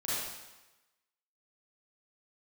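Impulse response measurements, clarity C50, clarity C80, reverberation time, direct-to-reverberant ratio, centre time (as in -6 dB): -5.0 dB, 0.0 dB, 1.1 s, -10.5 dB, 0.104 s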